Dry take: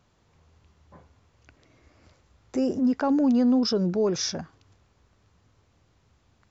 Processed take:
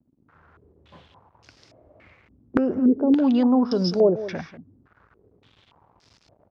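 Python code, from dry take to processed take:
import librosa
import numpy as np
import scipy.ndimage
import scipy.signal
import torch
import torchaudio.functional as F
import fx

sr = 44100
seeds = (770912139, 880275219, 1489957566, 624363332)

p1 = fx.quant_dither(x, sr, seeds[0], bits=10, dither='none')
p2 = scipy.signal.sosfilt(scipy.signal.butter(2, 44.0, 'highpass', fs=sr, output='sos'), p1)
p3 = fx.peak_eq(p2, sr, hz=70.0, db=-7.0, octaves=0.22)
p4 = p3 + fx.echo_single(p3, sr, ms=191, db=-14.5, dry=0)
p5 = fx.filter_held_lowpass(p4, sr, hz=3.5, low_hz=270.0, high_hz=5100.0)
y = F.gain(torch.from_numpy(p5), 1.5).numpy()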